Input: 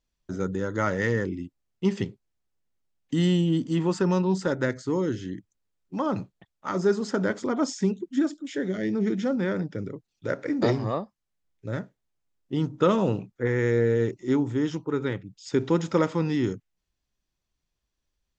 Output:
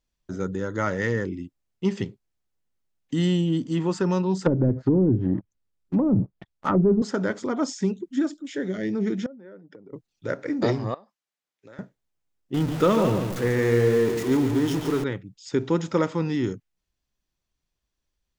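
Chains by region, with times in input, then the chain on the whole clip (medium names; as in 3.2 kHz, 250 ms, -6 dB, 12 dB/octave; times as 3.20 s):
4.46–7.02 s: bass shelf 250 Hz +6.5 dB + waveshaping leveller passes 2 + low-pass that closes with the level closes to 360 Hz, closed at -16 dBFS
9.26–9.93 s: spectral contrast enhancement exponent 1.5 + compression 10:1, threshold -37 dBFS + band-pass 320–7400 Hz
10.94–11.79 s: frequency weighting A + compression 5:1, threshold -44 dBFS
12.54–15.04 s: jump at every zero crossing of -28.5 dBFS + feedback delay 143 ms, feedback 40%, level -7 dB
whole clip: none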